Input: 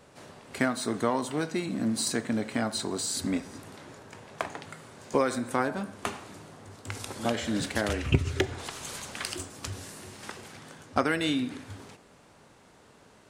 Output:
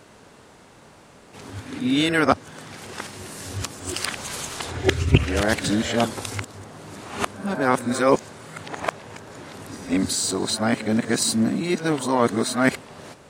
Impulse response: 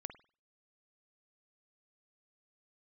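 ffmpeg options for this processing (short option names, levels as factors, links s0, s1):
-af "areverse,volume=2.37"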